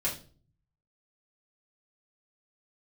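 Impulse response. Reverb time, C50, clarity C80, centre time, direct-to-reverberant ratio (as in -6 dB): 0.40 s, 9.0 dB, 15.5 dB, 22 ms, -7.0 dB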